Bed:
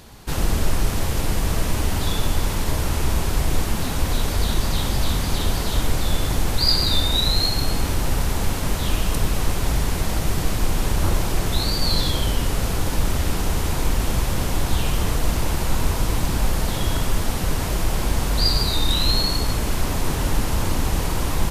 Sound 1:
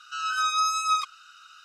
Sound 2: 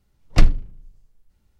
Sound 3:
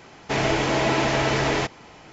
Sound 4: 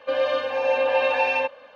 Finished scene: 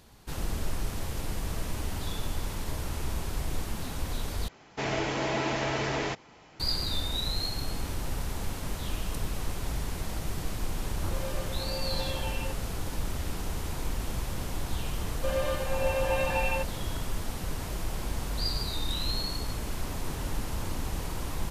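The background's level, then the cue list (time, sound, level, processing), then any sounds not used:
bed -11.5 dB
4.48 s: replace with 3 -8 dB
11.05 s: add 4 -17.5 dB
15.16 s: add 4 -8 dB
not used: 1, 2

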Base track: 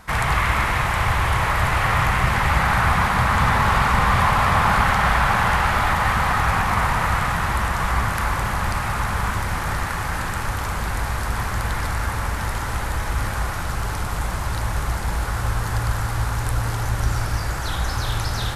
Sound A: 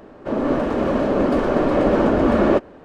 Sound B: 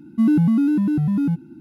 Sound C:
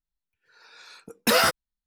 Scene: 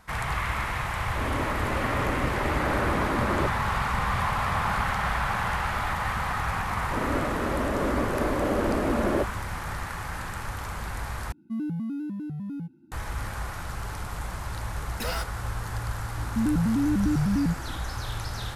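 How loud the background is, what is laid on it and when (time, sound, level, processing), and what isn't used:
base track -9 dB
0.89 s: add A -13 dB
6.65 s: add A -9.5 dB
11.32 s: replace with B -14.5 dB
13.73 s: add C -13 dB
16.18 s: add B -4 dB + peak limiter -16 dBFS

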